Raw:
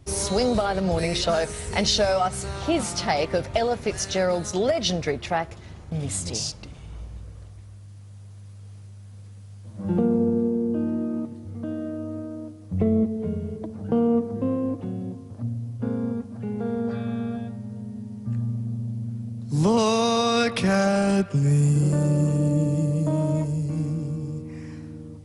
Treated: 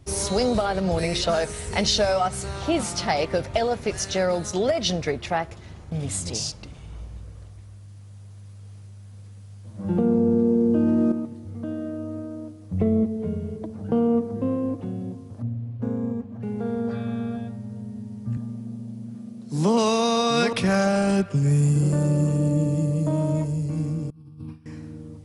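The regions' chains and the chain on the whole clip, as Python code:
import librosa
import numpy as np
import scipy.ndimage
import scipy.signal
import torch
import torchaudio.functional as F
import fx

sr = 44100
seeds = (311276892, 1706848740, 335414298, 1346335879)

y = fx.chain(x, sr, fx.lowpass(hz=9100.0, slope=12),
    fx.env_flatten(amount_pct=100), at=(10.06, 11.12))
y = fx.chain(y, sr, fx.air_absorb(metres=76.0),
    fx.notch(hz=1400.0, q=20.0),
    fx.resample_linear(factor=6), at=(15.42, 16.43))
y = fx.chain(y, sr, fx.highpass(hz=150.0, slope=24),
    fx.echo_single(ms=774, db=-8.0), at=(18.37, 20.53))
y = fx.chain(y, sr, fx.gate_hold(open_db=-27.0, close_db=-34.0, hold_ms=71.0, range_db=-21, attack_ms=1.4, release_ms=100.0),
    fx.over_compress(threshold_db=-37.0, ratio=-0.5),
    fx.fixed_phaser(hz=2000.0, stages=6), at=(24.1, 24.66))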